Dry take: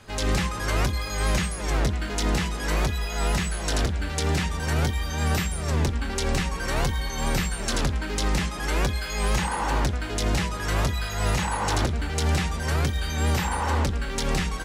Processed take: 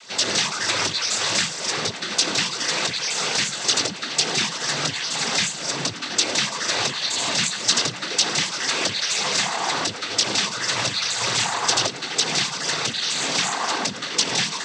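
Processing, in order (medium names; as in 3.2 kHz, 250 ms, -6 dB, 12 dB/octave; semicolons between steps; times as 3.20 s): high-pass 360 Hz 6 dB/octave; peaking EQ 4.7 kHz +13.5 dB 1.6 oct; noise-vocoded speech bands 16; trim +2 dB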